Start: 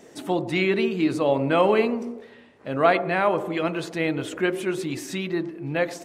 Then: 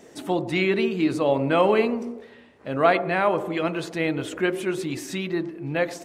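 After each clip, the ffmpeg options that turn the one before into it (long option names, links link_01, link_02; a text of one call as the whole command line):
ffmpeg -i in.wav -af "equalizer=frequency=69:width=5.4:gain=7" out.wav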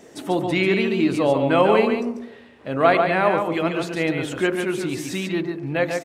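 ffmpeg -i in.wav -af "aecho=1:1:142:0.531,volume=2dB" out.wav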